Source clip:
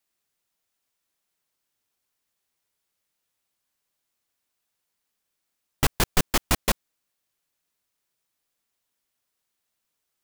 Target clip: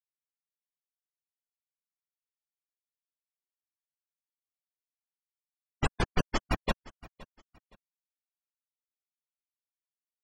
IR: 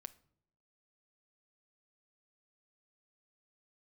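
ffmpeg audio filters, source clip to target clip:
-filter_complex "[0:a]afftfilt=real='re*gte(hypot(re,im),0.1)':imag='im*gte(hypot(re,im),0.1)':win_size=1024:overlap=0.75,asplit=2[link_01][link_02];[link_02]aecho=0:1:518|1036:0.0891|0.0267[link_03];[link_01][link_03]amix=inputs=2:normalize=0,volume=-4.5dB"

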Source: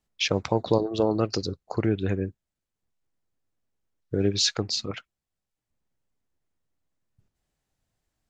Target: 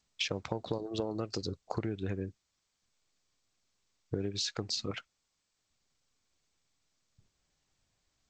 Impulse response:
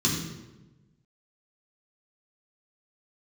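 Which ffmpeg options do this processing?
-af "acompressor=threshold=-29dB:ratio=16,volume=-1dB" -ar 16000 -c:a g722

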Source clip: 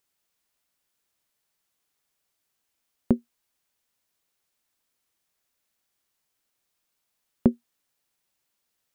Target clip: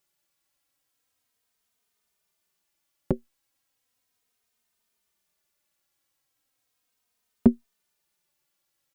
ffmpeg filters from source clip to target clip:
ffmpeg -i in.wav -filter_complex "[0:a]asplit=2[link_01][link_02];[link_02]adelay=3,afreqshift=-0.36[link_03];[link_01][link_03]amix=inputs=2:normalize=1,volume=3.5dB" out.wav

